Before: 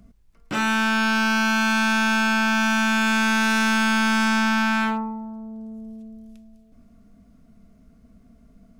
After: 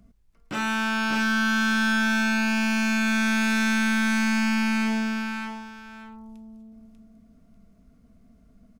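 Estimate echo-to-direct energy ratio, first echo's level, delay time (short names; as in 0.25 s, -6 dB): -5.0 dB, -5.0 dB, 0.593 s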